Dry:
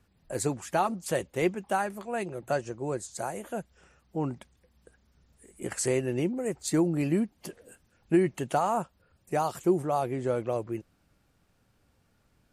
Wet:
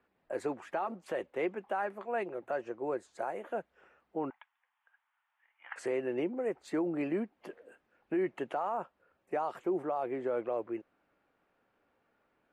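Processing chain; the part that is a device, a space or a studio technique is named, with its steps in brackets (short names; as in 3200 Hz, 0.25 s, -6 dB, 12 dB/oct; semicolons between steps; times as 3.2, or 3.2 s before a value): 4.3–5.76 elliptic band-pass 870–3300 Hz, stop band 40 dB; DJ mixer with the lows and highs turned down (three-band isolator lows -22 dB, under 280 Hz, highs -24 dB, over 2700 Hz; limiter -24.5 dBFS, peak gain reduction 10 dB)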